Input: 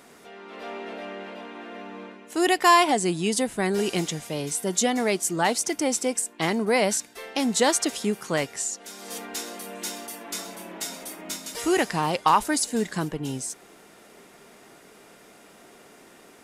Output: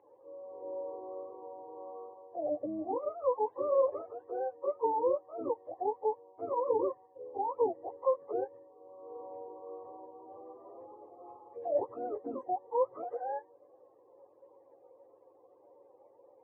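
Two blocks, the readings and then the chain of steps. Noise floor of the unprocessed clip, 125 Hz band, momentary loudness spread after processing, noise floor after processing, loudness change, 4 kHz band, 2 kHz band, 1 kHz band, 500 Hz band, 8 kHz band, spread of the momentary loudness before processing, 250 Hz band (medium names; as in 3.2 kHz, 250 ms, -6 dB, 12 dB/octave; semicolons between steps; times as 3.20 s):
-52 dBFS, under -25 dB, 19 LU, -63 dBFS, -10.0 dB, under -40 dB, under -35 dB, -10.5 dB, -4.5 dB, under -40 dB, 17 LU, -17.5 dB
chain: spectrum inverted on a logarithmic axis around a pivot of 470 Hz; ladder band-pass 610 Hz, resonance 75%; static phaser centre 940 Hz, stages 8; trim +8 dB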